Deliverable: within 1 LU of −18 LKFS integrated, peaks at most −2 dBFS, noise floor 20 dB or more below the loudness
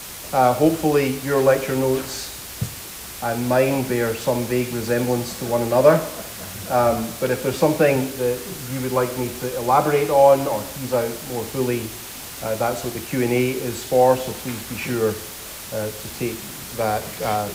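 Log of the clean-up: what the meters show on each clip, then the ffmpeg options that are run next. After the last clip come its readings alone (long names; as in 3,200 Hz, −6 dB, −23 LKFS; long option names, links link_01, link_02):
background noise floor −35 dBFS; target noise floor −42 dBFS; integrated loudness −21.5 LKFS; sample peak −1.5 dBFS; target loudness −18.0 LKFS
→ -af "afftdn=noise_reduction=7:noise_floor=-35"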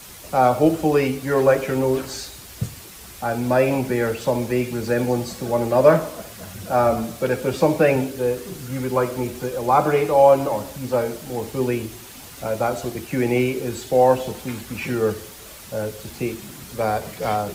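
background noise floor −41 dBFS; target noise floor −42 dBFS
→ -af "afftdn=noise_reduction=6:noise_floor=-41"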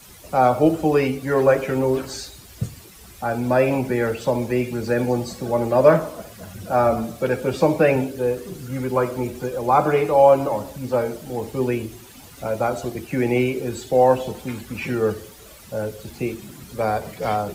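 background noise floor −44 dBFS; integrated loudness −21.5 LKFS; sample peak −2.0 dBFS; target loudness −18.0 LKFS
→ -af "volume=3.5dB,alimiter=limit=-2dB:level=0:latency=1"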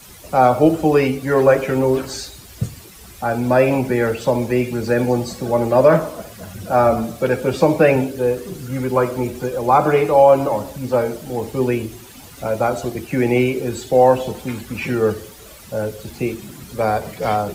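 integrated loudness −18.0 LKFS; sample peak −2.0 dBFS; background noise floor −41 dBFS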